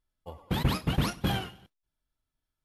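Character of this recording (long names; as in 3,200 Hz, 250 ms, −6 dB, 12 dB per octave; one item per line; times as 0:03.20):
background noise floor −88 dBFS
spectral slope −5.0 dB per octave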